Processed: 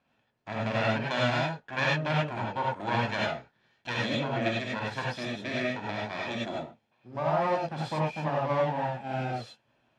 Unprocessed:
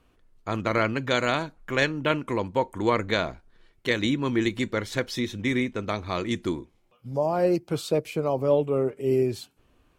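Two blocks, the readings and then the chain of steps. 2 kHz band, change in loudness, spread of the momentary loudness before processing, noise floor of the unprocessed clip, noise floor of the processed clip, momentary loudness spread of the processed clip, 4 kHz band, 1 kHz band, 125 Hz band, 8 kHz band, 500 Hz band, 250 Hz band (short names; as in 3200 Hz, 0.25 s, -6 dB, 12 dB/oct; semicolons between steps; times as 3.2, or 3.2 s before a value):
-2.0 dB, -4.0 dB, 7 LU, -65 dBFS, -73 dBFS, 8 LU, -2.5 dB, +0.5 dB, -1.0 dB, -8.5 dB, -6.0 dB, -7.0 dB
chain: minimum comb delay 1.2 ms; BPF 170–4200 Hz; non-linear reverb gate 0.12 s rising, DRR -4 dB; gain -6 dB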